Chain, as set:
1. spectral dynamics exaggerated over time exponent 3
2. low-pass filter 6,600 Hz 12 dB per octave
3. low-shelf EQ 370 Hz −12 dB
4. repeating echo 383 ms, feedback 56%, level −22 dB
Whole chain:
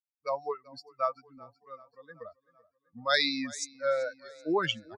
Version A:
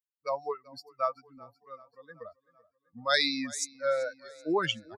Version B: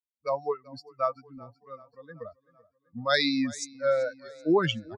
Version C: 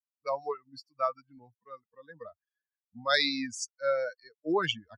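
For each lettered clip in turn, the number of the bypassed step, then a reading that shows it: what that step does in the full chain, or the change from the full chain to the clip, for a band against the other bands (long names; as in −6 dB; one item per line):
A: 2, 8 kHz band +3.5 dB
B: 3, 125 Hz band +9.5 dB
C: 4, echo-to-direct ratio −20.5 dB to none audible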